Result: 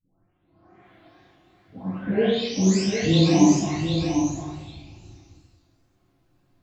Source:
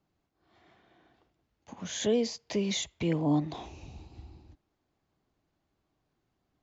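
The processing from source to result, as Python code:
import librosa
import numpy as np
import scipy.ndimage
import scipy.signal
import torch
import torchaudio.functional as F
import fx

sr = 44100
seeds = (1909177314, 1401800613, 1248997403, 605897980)

p1 = fx.spec_delay(x, sr, highs='late', ms=847)
p2 = fx.wow_flutter(p1, sr, seeds[0], rate_hz=2.1, depth_cents=120.0)
p3 = p2 + fx.echo_single(p2, sr, ms=749, db=-6.5, dry=0)
p4 = fx.room_shoebox(p3, sr, seeds[1], volume_m3=200.0, walls='mixed', distance_m=2.1)
y = F.gain(torch.from_numpy(p4), 4.0).numpy()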